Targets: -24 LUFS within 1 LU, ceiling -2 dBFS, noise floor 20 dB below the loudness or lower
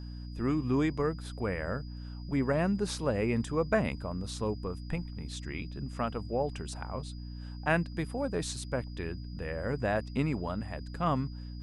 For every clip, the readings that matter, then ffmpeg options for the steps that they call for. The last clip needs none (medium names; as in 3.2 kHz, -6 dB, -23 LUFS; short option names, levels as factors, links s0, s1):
hum 60 Hz; highest harmonic 300 Hz; hum level -39 dBFS; steady tone 4.9 kHz; tone level -56 dBFS; loudness -33.0 LUFS; peak level -12.5 dBFS; loudness target -24.0 LUFS
-> -af "bandreject=f=60:t=h:w=6,bandreject=f=120:t=h:w=6,bandreject=f=180:t=h:w=6,bandreject=f=240:t=h:w=6,bandreject=f=300:t=h:w=6"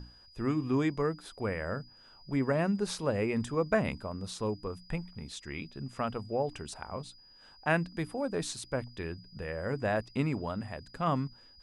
hum not found; steady tone 4.9 kHz; tone level -56 dBFS
-> -af "bandreject=f=4900:w=30"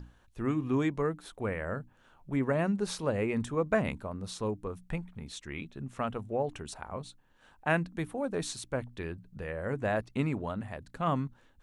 steady tone not found; loudness -34.0 LUFS; peak level -13.5 dBFS; loudness target -24.0 LUFS
-> -af "volume=3.16"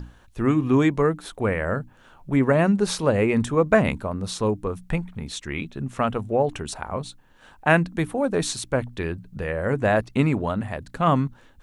loudness -24.0 LUFS; peak level -3.5 dBFS; noise floor -54 dBFS